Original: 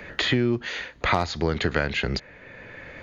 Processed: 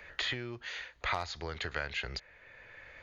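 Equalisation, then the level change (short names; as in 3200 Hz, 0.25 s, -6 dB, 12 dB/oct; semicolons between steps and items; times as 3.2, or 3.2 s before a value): bell 220 Hz -15 dB 2 oct; -8.5 dB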